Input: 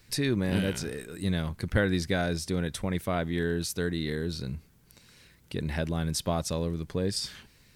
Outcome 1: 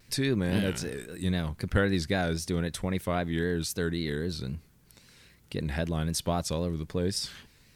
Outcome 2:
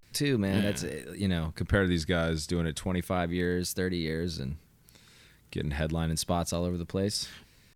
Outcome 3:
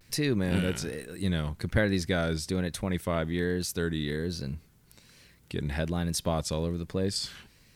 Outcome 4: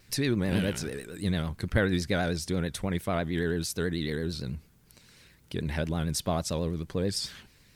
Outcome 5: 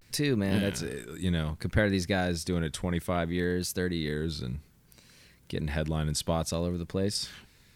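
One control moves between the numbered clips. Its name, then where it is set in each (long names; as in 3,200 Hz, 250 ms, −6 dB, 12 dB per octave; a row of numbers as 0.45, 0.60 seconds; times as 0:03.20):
pitch vibrato, speed: 3.8, 0.33, 1.2, 9.1, 0.62 Hertz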